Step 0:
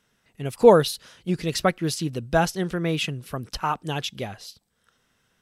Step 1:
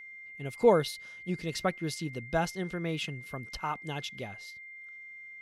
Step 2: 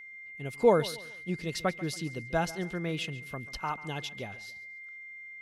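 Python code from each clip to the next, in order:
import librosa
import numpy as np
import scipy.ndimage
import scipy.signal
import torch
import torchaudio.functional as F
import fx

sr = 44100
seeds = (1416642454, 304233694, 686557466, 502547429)

y1 = fx.high_shelf(x, sr, hz=12000.0, db=-6.0)
y1 = y1 + 10.0 ** (-36.0 / 20.0) * np.sin(2.0 * np.pi * 2100.0 * np.arange(len(y1)) / sr)
y1 = y1 * librosa.db_to_amplitude(-8.5)
y2 = fx.echo_feedback(y1, sr, ms=140, feedback_pct=35, wet_db=-18)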